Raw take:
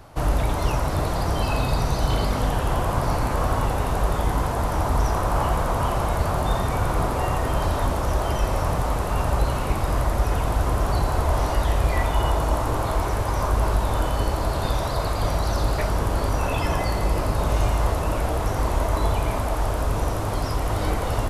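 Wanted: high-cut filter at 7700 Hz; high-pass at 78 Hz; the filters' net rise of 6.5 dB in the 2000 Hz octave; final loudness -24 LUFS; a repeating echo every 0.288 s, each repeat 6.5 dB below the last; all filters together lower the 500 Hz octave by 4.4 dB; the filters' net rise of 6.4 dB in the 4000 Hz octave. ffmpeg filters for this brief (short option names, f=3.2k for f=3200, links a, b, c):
-af "highpass=78,lowpass=7.7k,equalizer=f=500:t=o:g=-6.5,equalizer=f=2k:t=o:g=7.5,equalizer=f=4k:t=o:g=6,aecho=1:1:288|576|864|1152|1440|1728:0.473|0.222|0.105|0.0491|0.0231|0.0109"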